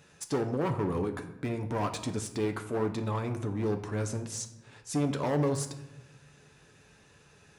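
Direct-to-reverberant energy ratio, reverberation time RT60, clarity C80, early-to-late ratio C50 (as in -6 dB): 5.5 dB, 1.0 s, 13.0 dB, 11.0 dB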